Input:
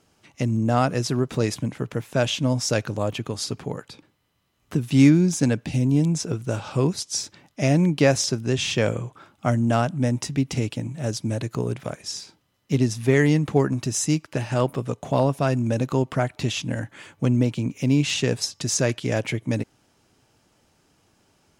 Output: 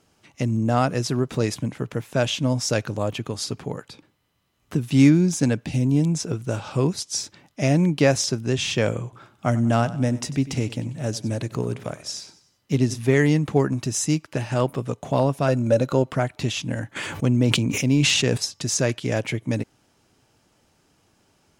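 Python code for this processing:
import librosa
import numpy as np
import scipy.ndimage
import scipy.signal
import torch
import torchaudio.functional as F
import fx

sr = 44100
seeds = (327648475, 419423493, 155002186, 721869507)

y = fx.echo_feedback(x, sr, ms=95, feedback_pct=47, wet_db=-17, at=(9.03, 12.99))
y = fx.small_body(y, sr, hz=(560.0, 1400.0, 4000.0), ring_ms=30, db=11, at=(15.48, 16.11))
y = fx.sustainer(y, sr, db_per_s=21.0, at=(16.95, 18.36), fade=0.02)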